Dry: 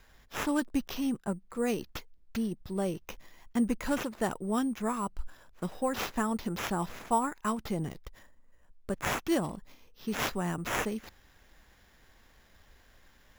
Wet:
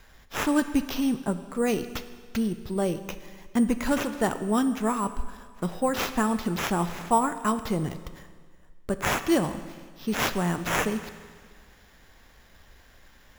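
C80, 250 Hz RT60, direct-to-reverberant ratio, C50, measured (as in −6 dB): 13.5 dB, 1.7 s, 10.5 dB, 12.0 dB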